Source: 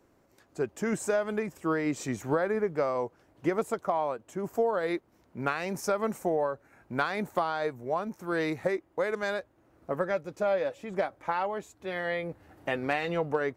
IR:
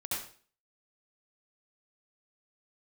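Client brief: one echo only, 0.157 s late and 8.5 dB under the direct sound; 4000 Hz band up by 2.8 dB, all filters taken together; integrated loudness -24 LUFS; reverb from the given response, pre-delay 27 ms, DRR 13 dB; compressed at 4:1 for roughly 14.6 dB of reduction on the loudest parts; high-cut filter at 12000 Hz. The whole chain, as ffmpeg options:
-filter_complex "[0:a]lowpass=12k,equalizer=f=4k:t=o:g=3.5,acompressor=threshold=-41dB:ratio=4,aecho=1:1:157:0.376,asplit=2[a][b];[1:a]atrim=start_sample=2205,adelay=27[c];[b][c]afir=irnorm=-1:irlink=0,volume=-16.5dB[d];[a][d]amix=inputs=2:normalize=0,volume=19dB"

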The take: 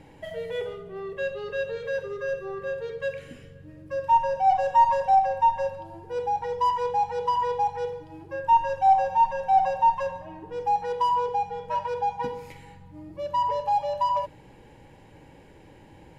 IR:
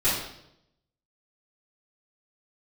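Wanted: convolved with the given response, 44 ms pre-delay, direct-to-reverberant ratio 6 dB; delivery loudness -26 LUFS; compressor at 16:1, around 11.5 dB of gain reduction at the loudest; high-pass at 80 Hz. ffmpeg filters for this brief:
-filter_complex "[0:a]highpass=80,acompressor=threshold=-26dB:ratio=16,asplit=2[a][b];[1:a]atrim=start_sample=2205,adelay=44[c];[b][c]afir=irnorm=-1:irlink=0,volume=-19.5dB[d];[a][d]amix=inputs=2:normalize=0,volume=4.5dB"

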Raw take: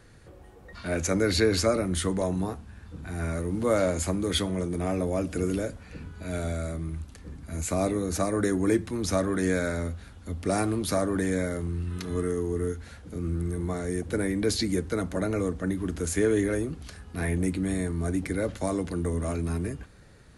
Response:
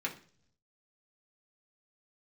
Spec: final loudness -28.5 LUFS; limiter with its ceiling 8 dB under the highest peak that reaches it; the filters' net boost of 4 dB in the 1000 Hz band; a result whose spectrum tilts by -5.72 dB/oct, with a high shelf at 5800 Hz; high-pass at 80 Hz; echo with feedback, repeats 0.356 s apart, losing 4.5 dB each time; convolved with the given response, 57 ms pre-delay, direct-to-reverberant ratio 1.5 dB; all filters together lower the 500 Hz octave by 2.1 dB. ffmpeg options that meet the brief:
-filter_complex "[0:a]highpass=80,equalizer=f=500:t=o:g=-4.5,equalizer=f=1k:t=o:g=7.5,highshelf=f=5.8k:g=-8.5,alimiter=limit=-20.5dB:level=0:latency=1,aecho=1:1:356|712|1068|1424|1780|2136|2492|2848|3204:0.596|0.357|0.214|0.129|0.0772|0.0463|0.0278|0.0167|0.01,asplit=2[a][b];[1:a]atrim=start_sample=2205,adelay=57[c];[b][c]afir=irnorm=-1:irlink=0,volume=-5.5dB[d];[a][d]amix=inputs=2:normalize=0,volume=-1dB"

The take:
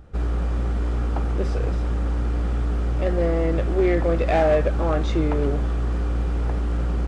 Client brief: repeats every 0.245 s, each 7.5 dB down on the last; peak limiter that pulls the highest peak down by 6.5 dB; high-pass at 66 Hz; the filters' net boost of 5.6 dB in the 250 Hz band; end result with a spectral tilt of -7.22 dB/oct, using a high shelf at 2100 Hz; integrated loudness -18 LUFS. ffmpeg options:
-af "highpass=66,equalizer=f=250:t=o:g=8.5,highshelf=f=2.1k:g=-8,alimiter=limit=-13.5dB:level=0:latency=1,aecho=1:1:245|490|735|980|1225:0.422|0.177|0.0744|0.0312|0.0131,volume=6.5dB"

